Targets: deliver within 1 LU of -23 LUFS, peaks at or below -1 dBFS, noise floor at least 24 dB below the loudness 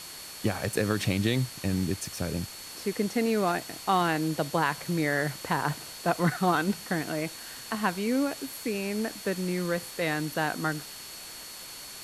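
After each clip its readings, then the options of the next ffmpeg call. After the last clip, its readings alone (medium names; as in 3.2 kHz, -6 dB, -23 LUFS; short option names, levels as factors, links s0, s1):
steady tone 4.4 kHz; tone level -46 dBFS; noise floor -43 dBFS; noise floor target -53 dBFS; loudness -29.0 LUFS; peak level -11.5 dBFS; loudness target -23.0 LUFS
-> -af "bandreject=f=4400:w=30"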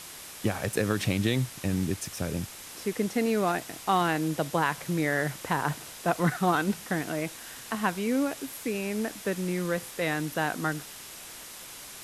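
steady tone not found; noise floor -44 dBFS; noise floor target -54 dBFS
-> -af "afftdn=nr=10:nf=-44"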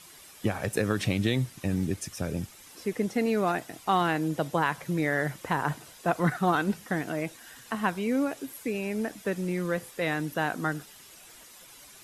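noise floor -51 dBFS; noise floor target -54 dBFS
-> -af "afftdn=nr=6:nf=-51"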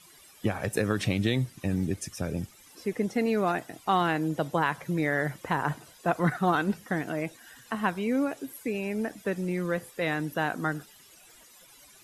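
noise floor -55 dBFS; loudness -29.5 LUFS; peak level -12.0 dBFS; loudness target -23.0 LUFS
-> -af "volume=2.11"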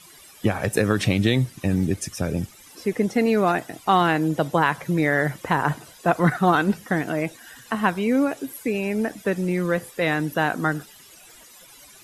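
loudness -23.0 LUFS; peak level -5.5 dBFS; noise floor -48 dBFS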